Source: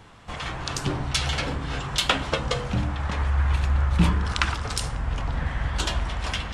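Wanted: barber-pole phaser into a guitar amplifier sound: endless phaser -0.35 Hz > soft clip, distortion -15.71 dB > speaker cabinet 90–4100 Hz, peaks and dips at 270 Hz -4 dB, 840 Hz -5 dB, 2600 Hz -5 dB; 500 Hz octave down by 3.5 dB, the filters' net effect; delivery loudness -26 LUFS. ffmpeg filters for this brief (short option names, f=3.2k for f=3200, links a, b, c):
-filter_complex "[0:a]equalizer=f=500:t=o:g=-3.5,asplit=2[a][b];[b]afreqshift=-0.35[c];[a][c]amix=inputs=2:normalize=1,asoftclip=threshold=-19dB,highpass=90,equalizer=f=270:t=q:w=4:g=-4,equalizer=f=840:t=q:w=4:g=-5,equalizer=f=2.6k:t=q:w=4:g=-5,lowpass=f=4.1k:w=0.5412,lowpass=f=4.1k:w=1.3066,volume=8dB"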